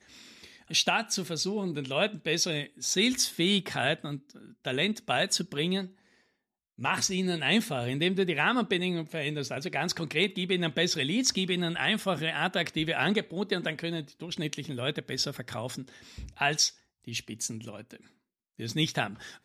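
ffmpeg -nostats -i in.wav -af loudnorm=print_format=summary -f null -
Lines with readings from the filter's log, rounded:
Input Integrated:    -29.1 LUFS
Input True Peak:     -10.6 dBTP
Input LRA:             4.3 LU
Input Threshold:     -39.8 LUFS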